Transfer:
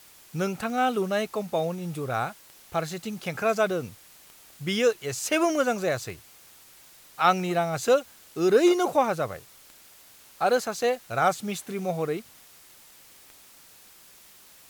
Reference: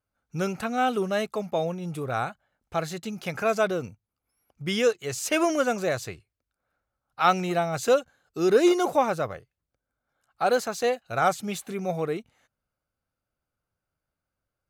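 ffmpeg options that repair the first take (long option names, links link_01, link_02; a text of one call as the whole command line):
ffmpeg -i in.wav -af "adeclick=threshold=4,afwtdn=0.0025" out.wav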